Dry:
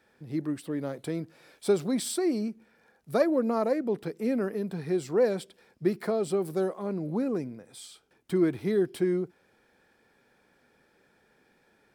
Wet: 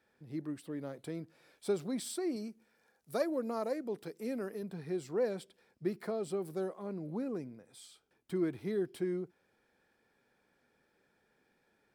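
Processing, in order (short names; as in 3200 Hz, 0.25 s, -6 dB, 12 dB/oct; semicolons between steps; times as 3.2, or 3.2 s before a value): 2.36–4.63 tone controls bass -4 dB, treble +7 dB; gain -8.5 dB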